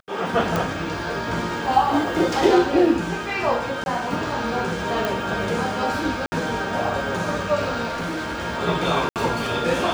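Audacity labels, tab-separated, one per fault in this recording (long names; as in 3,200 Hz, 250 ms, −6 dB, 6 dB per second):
0.560000	0.560000	click
3.840000	3.860000	drop-out 21 ms
5.050000	5.050000	click
6.260000	6.320000	drop-out 60 ms
7.880000	8.390000	clipping −24 dBFS
9.090000	9.160000	drop-out 68 ms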